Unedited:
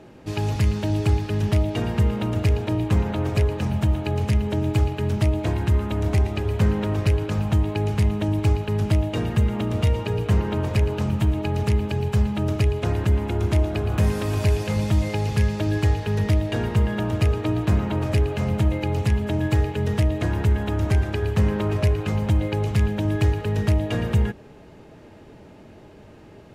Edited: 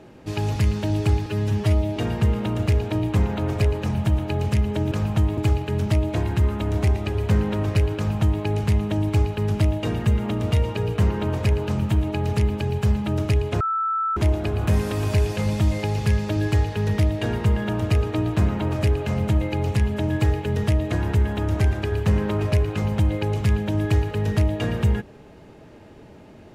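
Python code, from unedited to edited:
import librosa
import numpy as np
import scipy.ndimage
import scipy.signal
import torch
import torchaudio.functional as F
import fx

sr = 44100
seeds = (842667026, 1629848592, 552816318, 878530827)

y = fx.edit(x, sr, fx.stretch_span(start_s=1.26, length_s=0.47, factor=1.5),
    fx.duplicate(start_s=7.27, length_s=0.46, to_s=4.68),
    fx.bleep(start_s=12.91, length_s=0.56, hz=1320.0, db=-20.5), tone=tone)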